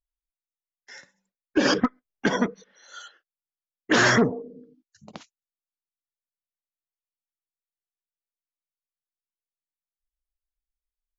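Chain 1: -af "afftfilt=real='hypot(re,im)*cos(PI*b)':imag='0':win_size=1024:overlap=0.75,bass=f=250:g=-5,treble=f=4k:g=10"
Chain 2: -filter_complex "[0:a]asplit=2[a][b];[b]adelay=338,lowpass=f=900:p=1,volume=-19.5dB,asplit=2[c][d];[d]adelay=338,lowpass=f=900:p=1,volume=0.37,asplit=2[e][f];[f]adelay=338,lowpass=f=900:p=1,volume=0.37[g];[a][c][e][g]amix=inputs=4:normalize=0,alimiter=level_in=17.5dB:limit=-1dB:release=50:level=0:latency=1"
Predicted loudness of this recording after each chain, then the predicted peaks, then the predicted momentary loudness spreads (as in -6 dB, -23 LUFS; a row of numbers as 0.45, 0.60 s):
-25.5, -13.5 LUFS; -2.0, -1.0 dBFS; 23, 21 LU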